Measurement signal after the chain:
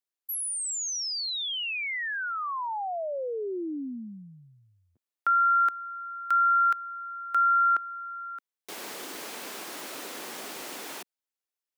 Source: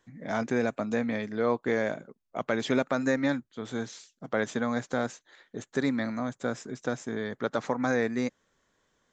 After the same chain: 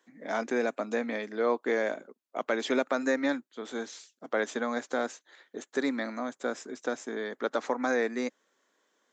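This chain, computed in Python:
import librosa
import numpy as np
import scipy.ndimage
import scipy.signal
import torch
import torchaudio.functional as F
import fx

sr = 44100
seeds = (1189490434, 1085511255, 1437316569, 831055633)

y = scipy.signal.sosfilt(scipy.signal.butter(4, 260.0, 'highpass', fs=sr, output='sos'), x)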